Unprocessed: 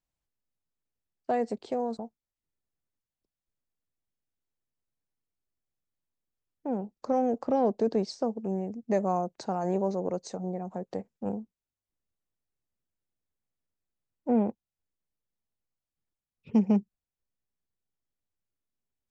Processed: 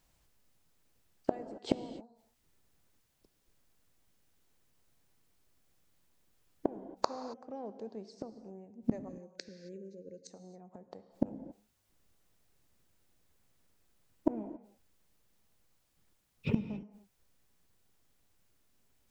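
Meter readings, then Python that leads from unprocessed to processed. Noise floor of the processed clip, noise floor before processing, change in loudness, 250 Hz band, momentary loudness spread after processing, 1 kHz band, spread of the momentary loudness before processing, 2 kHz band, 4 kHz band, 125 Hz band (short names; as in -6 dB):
-75 dBFS, under -85 dBFS, -9.5 dB, -9.0 dB, 17 LU, -11.5 dB, 11 LU, -4.0 dB, -1.5 dB, -6.5 dB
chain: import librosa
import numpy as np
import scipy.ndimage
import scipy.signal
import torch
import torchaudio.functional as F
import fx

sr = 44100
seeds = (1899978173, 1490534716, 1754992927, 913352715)

y = fx.spec_erase(x, sr, start_s=9.09, length_s=1.21, low_hz=560.0, high_hz=1500.0)
y = fx.gate_flip(y, sr, shuts_db=-31.0, range_db=-35)
y = fx.rev_gated(y, sr, seeds[0], gate_ms=300, shape='flat', drr_db=11.0)
y = F.gain(torch.from_numpy(y), 17.0).numpy()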